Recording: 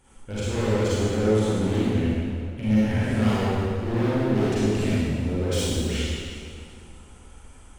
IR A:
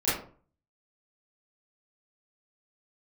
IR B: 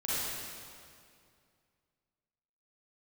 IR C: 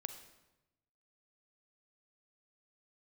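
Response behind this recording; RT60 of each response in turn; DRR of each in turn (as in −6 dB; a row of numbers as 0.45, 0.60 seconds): B; 0.45, 2.3, 1.0 seconds; −13.0, −10.5, 8.0 decibels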